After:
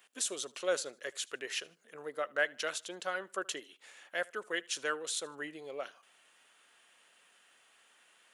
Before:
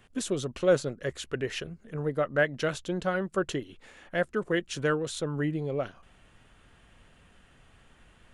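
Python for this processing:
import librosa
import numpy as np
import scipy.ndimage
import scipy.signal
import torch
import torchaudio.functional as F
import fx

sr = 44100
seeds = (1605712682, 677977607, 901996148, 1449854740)

p1 = scipy.signal.sosfilt(scipy.signal.butter(2, 390.0, 'highpass', fs=sr, output='sos'), x)
p2 = fx.tilt_eq(p1, sr, slope=3.0)
p3 = p2 + fx.echo_feedback(p2, sr, ms=76, feedback_pct=33, wet_db=-24.0, dry=0)
y = F.gain(torch.from_numpy(p3), -5.5).numpy()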